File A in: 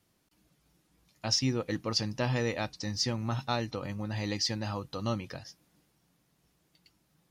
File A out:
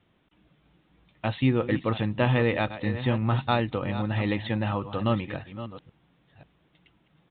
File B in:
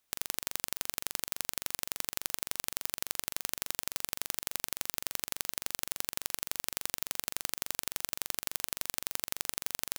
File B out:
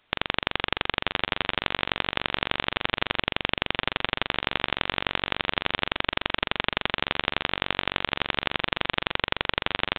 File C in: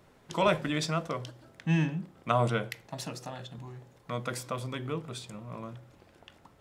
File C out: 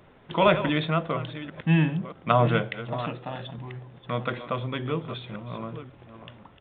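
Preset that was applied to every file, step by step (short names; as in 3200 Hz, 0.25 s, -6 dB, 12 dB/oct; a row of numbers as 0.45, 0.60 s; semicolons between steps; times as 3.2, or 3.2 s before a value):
reverse delay 0.536 s, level -12 dB; downsampling 8000 Hz; match loudness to -27 LUFS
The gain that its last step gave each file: +7.0, +16.5, +5.5 dB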